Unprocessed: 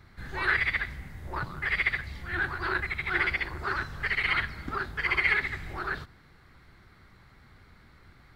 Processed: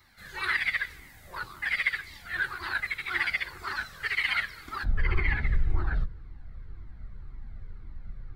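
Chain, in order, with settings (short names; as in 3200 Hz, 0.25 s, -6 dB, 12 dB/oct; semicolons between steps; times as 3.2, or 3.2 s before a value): octaver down 2 oct, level +3 dB; tilt +3.5 dB/oct, from 4.83 s -3 dB/oct; cascading flanger falling 1.9 Hz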